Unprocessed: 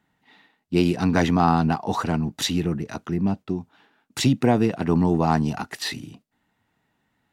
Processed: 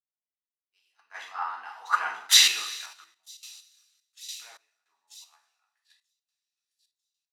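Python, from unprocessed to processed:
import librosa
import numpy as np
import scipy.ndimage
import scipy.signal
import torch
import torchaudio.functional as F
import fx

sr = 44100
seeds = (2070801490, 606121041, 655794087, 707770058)

p1 = fx.doppler_pass(x, sr, speed_mps=14, closest_m=2.4, pass_at_s=2.44)
p2 = fx.ladder_highpass(p1, sr, hz=1000.0, resonance_pct=25)
p3 = p2 + fx.echo_wet_highpass(p2, sr, ms=941, feedback_pct=44, hz=4500.0, wet_db=-3.5, dry=0)
p4 = fx.rev_double_slope(p3, sr, seeds[0], early_s=0.56, late_s=3.1, knee_db=-18, drr_db=-2.5)
p5 = fx.tremolo_random(p4, sr, seeds[1], hz=3.5, depth_pct=90)
p6 = fx.level_steps(p5, sr, step_db=20)
p7 = p5 + (p6 * 10.0 ** (2.5 / 20.0))
p8 = fx.band_widen(p7, sr, depth_pct=100)
y = p8 * 10.0 ** (4.5 / 20.0)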